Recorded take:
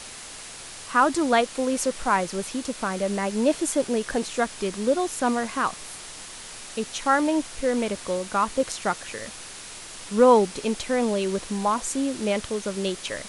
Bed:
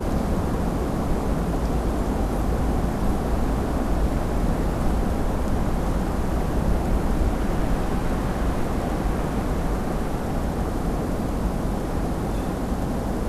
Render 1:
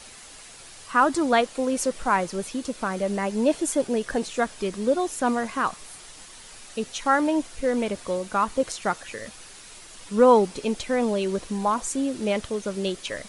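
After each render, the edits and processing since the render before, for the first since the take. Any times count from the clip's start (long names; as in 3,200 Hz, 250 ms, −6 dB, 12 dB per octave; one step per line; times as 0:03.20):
broadband denoise 7 dB, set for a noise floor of −40 dBFS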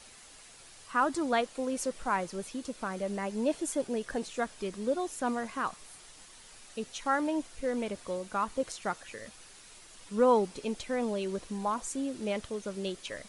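level −8 dB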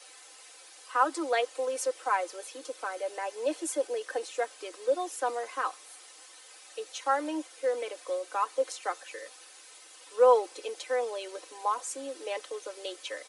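Butterworth high-pass 320 Hz 72 dB per octave
comb filter 3.9 ms, depth 68%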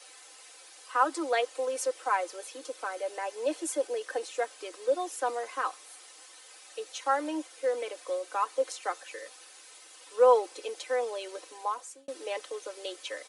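0:11.32–0:12.08: fade out equal-power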